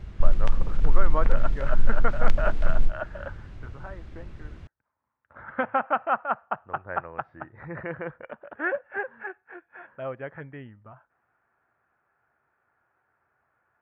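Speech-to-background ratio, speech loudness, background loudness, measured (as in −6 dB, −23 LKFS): −1.5 dB, −32.0 LKFS, −30.5 LKFS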